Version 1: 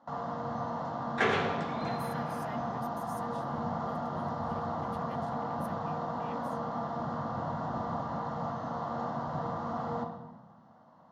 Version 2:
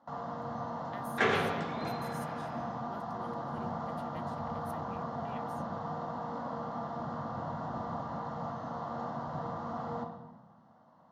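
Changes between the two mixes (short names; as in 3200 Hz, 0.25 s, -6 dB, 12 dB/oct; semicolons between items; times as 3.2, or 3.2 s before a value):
speech: entry -0.95 s; first sound -3.0 dB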